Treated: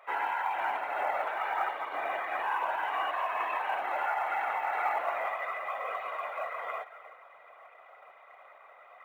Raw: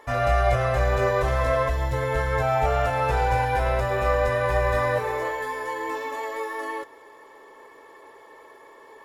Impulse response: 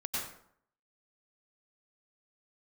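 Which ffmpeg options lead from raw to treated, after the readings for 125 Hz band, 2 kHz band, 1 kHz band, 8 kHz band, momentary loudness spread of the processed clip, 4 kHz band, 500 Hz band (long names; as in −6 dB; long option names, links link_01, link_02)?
below −40 dB, −5.5 dB, −4.5 dB, below −15 dB, 6 LU, −7.5 dB, −14.5 dB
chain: -filter_complex "[0:a]asplit=2[link_01][link_02];[1:a]atrim=start_sample=2205,highshelf=frequency=2700:gain=-6.5,adelay=145[link_03];[link_02][link_03]afir=irnorm=-1:irlink=0,volume=-14.5dB[link_04];[link_01][link_04]amix=inputs=2:normalize=0,alimiter=limit=-15.5dB:level=0:latency=1:release=73,highpass=frequency=220:width_type=q:width=0.5412,highpass=frequency=220:width_type=q:width=1.307,lowpass=frequency=3100:width_type=q:width=0.5176,lowpass=frequency=3100:width_type=q:width=0.7071,lowpass=frequency=3100:width_type=q:width=1.932,afreqshift=230,afftfilt=real='hypot(re,im)*cos(2*PI*random(0))':imag='hypot(re,im)*sin(2*PI*random(1))':win_size=512:overlap=0.75,acrusher=bits=9:mode=log:mix=0:aa=0.000001"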